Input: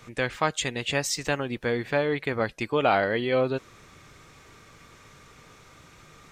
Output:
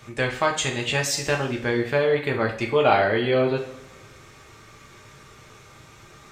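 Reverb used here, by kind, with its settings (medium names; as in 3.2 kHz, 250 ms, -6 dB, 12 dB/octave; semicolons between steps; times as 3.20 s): two-slope reverb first 0.45 s, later 1.6 s, from -17 dB, DRR 0.5 dB; trim +1 dB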